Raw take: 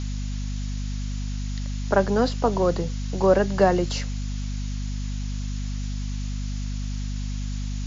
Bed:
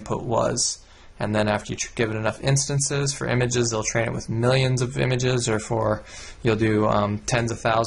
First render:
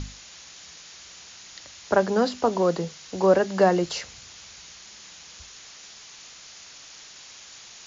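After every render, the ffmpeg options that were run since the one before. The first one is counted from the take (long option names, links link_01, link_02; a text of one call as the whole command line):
ffmpeg -i in.wav -af "bandreject=frequency=50:width_type=h:width=6,bandreject=frequency=100:width_type=h:width=6,bandreject=frequency=150:width_type=h:width=6,bandreject=frequency=200:width_type=h:width=6,bandreject=frequency=250:width_type=h:width=6" out.wav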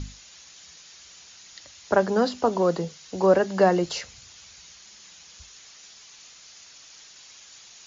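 ffmpeg -i in.wav -af "afftdn=noise_reduction=6:noise_floor=-46" out.wav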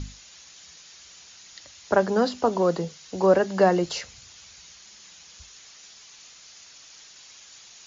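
ffmpeg -i in.wav -af anull out.wav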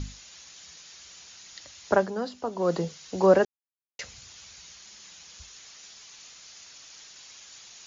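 ffmpeg -i in.wav -filter_complex "[0:a]asplit=5[link_01][link_02][link_03][link_04][link_05];[link_01]atrim=end=2.12,asetpts=PTS-STARTPTS,afade=type=out:start_time=1.92:duration=0.2:silence=0.334965[link_06];[link_02]atrim=start=2.12:end=2.56,asetpts=PTS-STARTPTS,volume=-9.5dB[link_07];[link_03]atrim=start=2.56:end=3.45,asetpts=PTS-STARTPTS,afade=type=in:duration=0.2:silence=0.334965,afade=type=out:start_time=0.886:duration=0.004:curve=hsin[link_08];[link_04]atrim=start=3.45:end=3.99,asetpts=PTS-STARTPTS,volume=0[link_09];[link_05]atrim=start=3.99,asetpts=PTS-STARTPTS,afade=type=in:duration=0.004:curve=hsin[link_10];[link_06][link_07][link_08][link_09][link_10]concat=n=5:v=0:a=1" out.wav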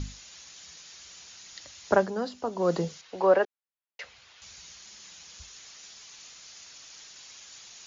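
ffmpeg -i in.wav -filter_complex "[0:a]asettb=1/sr,asplit=3[link_01][link_02][link_03];[link_01]atrim=end=3.014[link_04];[link_02]atrim=start=3.01:end=4.42,asetpts=PTS-STARTPTS,afade=type=in:duration=0.004:curve=qsin,afade=type=out:start_time=1.406:duration=0.004:curve=qsin,acrossover=split=410 3900:gain=0.2 1 0.112[link_05][link_06][link_07];[link_05][link_06][link_07]amix=inputs=3:normalize=0[link_08];[link_03]atrim=start=4.416[link_09];[link_04][link_08]acrossfade=duration=0.004:curve1=hsin:curve2=qsin[link_10];[link_10][link_09]acrossfade=duration=0.004:curve1=qsin:curve2=hsin" out.wav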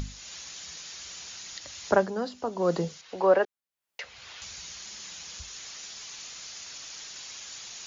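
ffmpeg -i in.wav -af "acompressor=mode=upward:threshold=-34dB:ratio=2.5" out.wav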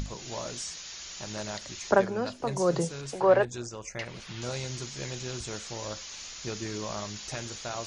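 ffmpeg -i in.wav -i bed.wav -filter_complex "[1:a]volume=-16dB[link_01];[0:a][link_01]amix=inputs=2:normalize=0" out.wav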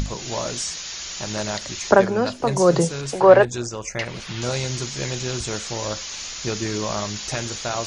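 ffmpeg -i in.wav -af "volume=9.5dB,alimiter=limit=-1dB:level=0:latency=1" out.wav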